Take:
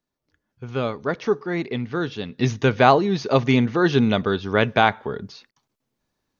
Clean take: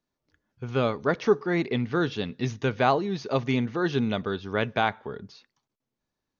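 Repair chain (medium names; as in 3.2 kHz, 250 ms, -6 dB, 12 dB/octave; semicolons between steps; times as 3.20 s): interpolate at 5.51 s, 49 ms; trim 0 dB, from 2.38 s -7.5 dB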